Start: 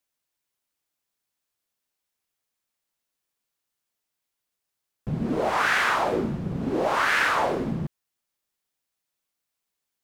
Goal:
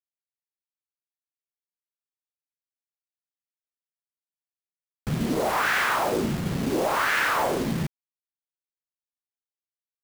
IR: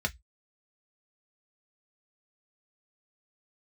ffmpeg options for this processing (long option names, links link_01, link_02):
-filter_complex "[0:a]asplit=2[link_01][link_02];[link_02]alimiter=limit=-21dB:level=0:latency=1:release=63,volume=2dB[link_03];[link_01][link_03]amix=inputs=2:normalize=0,acrusher=bits=4:mix=0:aa=0.000001,volume=-5dB"